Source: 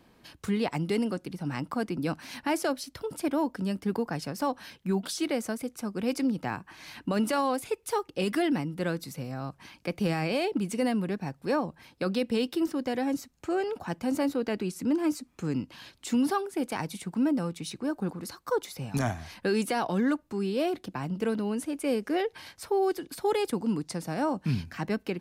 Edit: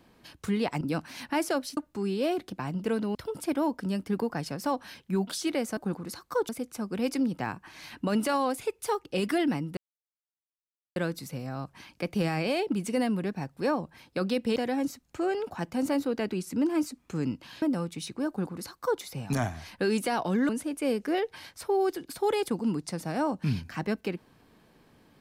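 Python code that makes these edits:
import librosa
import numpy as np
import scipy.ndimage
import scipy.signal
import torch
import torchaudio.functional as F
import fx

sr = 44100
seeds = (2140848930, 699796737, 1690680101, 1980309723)

y = fx.edit(x, sr, fx.cut(start_s=0.81, length_s=1.14),
    fx.insert_silence(at_s=8.81, length_s=1.19),
    fx.cut(start_s=12.41, length_s=0.44),
    fx.cut(start_s=15.91, length_s=1.35),
    fx.duplicate(start_s=17.93, length_s=0.72, to_s=5.53),
    fx.move(start_s=20.13, length_s=1.38, to_s=2.91), tone=tone)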